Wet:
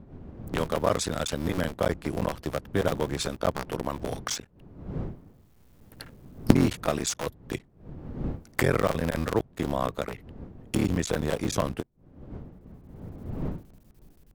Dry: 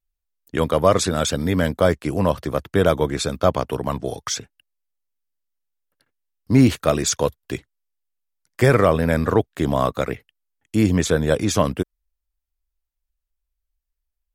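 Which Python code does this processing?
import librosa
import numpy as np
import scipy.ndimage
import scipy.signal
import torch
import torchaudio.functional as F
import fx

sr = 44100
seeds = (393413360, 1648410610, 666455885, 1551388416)

y = fx.cycle_switch(x, sr, every=3, mode='muted')
y = fx.recorder_agc(y, sr, target_db=-10.5, rise_db_per_s=21.0, max_gain_db=30)
y = fx.dmg_wind(y, sr, seeds[0], corner_hz=210.0, level_db=-34.0)
y = y * librosa.db_to_amplitude(-7.5)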